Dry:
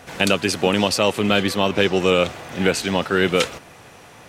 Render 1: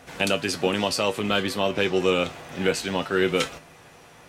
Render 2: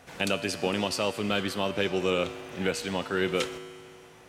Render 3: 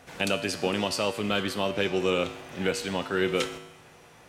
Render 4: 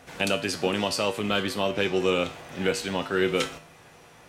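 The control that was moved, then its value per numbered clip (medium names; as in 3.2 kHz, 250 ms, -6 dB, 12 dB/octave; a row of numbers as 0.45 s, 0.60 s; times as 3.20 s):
feedback comb, decay: 0.17 s, 2 s, 0.93 s, 0.4 s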